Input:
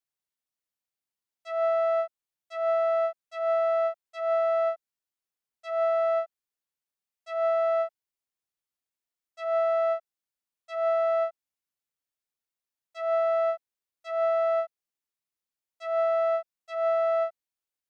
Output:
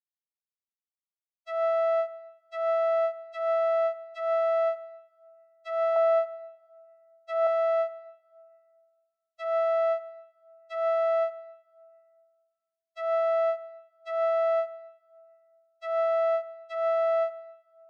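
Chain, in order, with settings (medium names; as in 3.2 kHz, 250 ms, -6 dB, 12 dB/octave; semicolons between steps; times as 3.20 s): expander -40 dBFS; 5.96–7.47 s: peaking EQ 890 Hz +14 dB 0.4 oct; reverberation RT60 2.0 s, pre-delay 7 ms, DRR 13.5 dB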